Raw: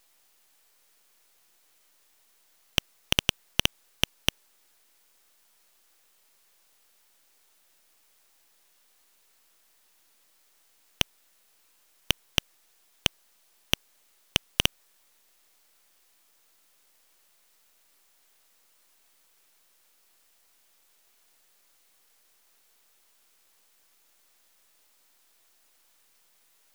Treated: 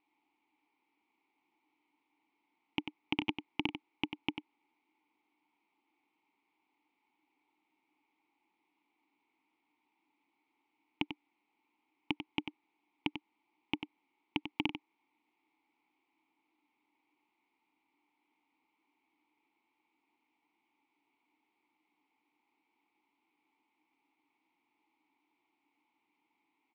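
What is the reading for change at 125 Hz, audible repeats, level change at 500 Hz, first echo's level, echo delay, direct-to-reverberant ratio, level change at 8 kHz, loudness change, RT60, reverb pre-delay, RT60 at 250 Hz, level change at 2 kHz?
-13.0 dB, 1, -8.5 dB, -9.0 dB, 94 ms, none, under -35 dB, -11.0 dB, none, none, none, -9.0 dB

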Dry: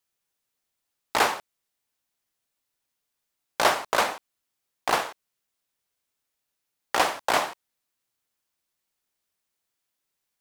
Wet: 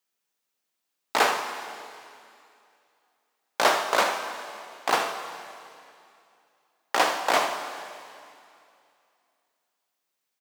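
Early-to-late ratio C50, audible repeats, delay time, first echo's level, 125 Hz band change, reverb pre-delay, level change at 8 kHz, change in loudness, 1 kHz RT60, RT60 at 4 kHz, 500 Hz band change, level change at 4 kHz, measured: 6.0 dB, 1, 77 ms, -12.5 dB, n/a, 3 ms, 0.0 dB, -0.5 dB, 2.5 s, 2.5 s, +1.5 dB, +1.0 dB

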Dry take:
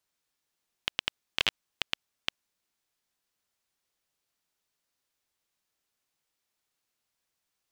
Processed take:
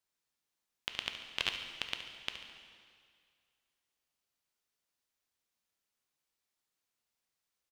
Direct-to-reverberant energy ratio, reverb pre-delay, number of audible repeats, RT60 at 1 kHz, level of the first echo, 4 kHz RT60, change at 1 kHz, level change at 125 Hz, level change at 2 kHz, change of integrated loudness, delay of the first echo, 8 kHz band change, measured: 4.5 dB, 5 ms, 2, 2.1 s, -12.0 dB, 2.0 s, -4.5 dB, -5.0 dB, -4.5 dB, -5.0 dB, 71 ms, -4.5 dB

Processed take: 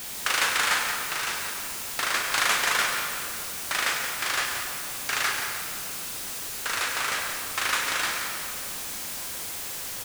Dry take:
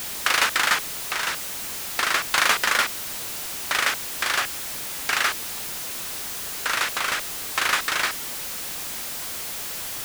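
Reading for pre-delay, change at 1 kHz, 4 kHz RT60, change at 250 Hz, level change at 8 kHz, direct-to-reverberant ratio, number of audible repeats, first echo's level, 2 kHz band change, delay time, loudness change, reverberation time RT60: 19 ms, -3.0 dB, 1.6 s, -2.5 dB, -1.5 dB, 0.5 dB, 1, -8.0 dB, -3.0 dB, 0.176 s, -2.5 dB, 2.4 s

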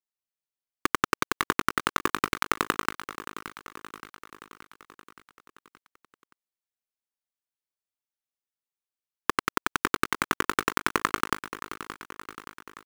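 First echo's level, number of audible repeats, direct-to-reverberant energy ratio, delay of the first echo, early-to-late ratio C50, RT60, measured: -13.0 dB, 5, none, 0.573 s, none, none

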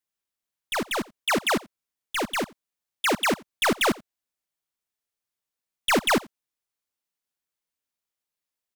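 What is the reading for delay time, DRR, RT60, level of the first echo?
86 ms, none, none, -23.5 dB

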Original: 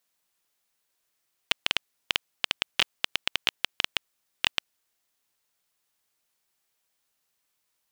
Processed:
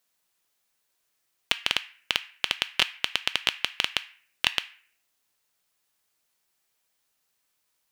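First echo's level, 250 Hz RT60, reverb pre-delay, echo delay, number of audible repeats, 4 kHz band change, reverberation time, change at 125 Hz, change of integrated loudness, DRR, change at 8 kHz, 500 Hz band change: none, 0.60 s, 3 ms, none, none, +1.5 dB, 0.45 s, +1.5 dB, +2.0 dB, 11.0 dB, +1.5 dB, +1.5 dB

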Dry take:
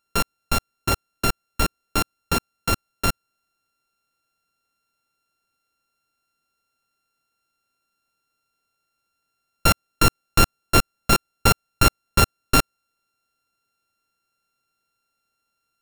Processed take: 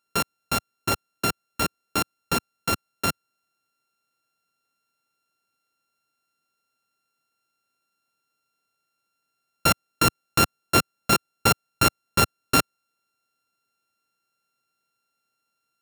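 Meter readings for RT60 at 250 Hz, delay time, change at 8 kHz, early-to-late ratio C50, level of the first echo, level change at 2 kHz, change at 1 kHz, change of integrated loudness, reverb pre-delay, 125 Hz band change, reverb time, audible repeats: none, none, -1.5 dB, none, none, -1.5 dB, -1.5 dB, -2.0 dB, none, -5.0 dB, none, none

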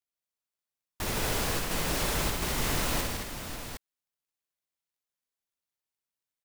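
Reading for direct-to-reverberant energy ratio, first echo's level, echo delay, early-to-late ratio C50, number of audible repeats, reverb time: none, -5.5 dB, 62 ms, none, 5, none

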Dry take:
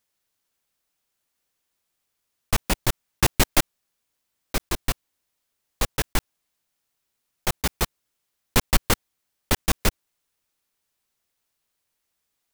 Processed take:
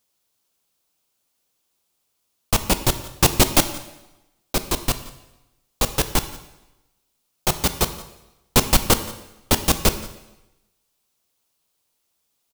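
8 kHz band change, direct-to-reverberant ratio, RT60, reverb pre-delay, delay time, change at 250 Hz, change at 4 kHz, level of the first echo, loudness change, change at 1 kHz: +6.0 dB, 9.5 dB, 0.95 s, 7 ms, 0.174 s, +5.5 dB, +5.0 dB, -20.5 dB, +4.5 dB, +4.5 dB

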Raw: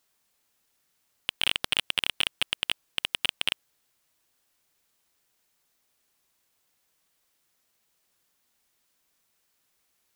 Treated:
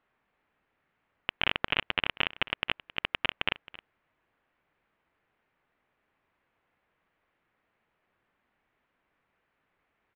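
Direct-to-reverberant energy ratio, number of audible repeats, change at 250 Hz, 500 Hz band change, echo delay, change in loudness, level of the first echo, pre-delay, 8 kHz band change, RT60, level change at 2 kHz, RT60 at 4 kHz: none, 1, +5.0 dB, +5.0 dB, 0.268 s, -2.5 dB, -19.0 dB, none, under -35 dB, none, +1.0 dB, none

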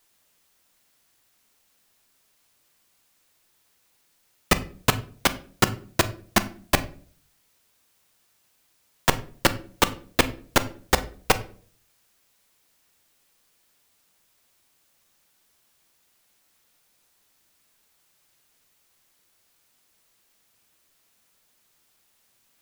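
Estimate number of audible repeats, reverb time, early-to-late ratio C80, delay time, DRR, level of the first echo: none, 0.45 s, 20.5 dB, none, 11.0 dB, none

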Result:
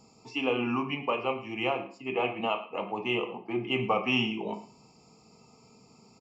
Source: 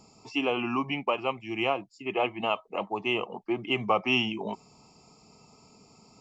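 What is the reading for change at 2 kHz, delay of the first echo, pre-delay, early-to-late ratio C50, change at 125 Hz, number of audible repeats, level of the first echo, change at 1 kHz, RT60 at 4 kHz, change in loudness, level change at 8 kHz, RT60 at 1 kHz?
-1.5 dB, 0.11 s, 3 ms, 10.5 dB, +1.5 dB, 1, -17.0 dB, -2.0 dB, 0.40 s, -1.0 dB, n/a, 0.45 s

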